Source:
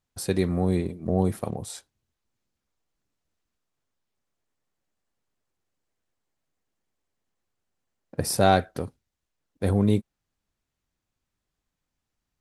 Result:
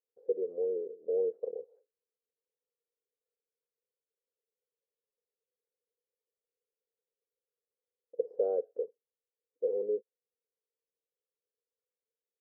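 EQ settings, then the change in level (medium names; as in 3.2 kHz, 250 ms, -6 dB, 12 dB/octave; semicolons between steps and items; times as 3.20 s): Butterworth band-pass 470 Hz, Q 5.3; +2.5 dB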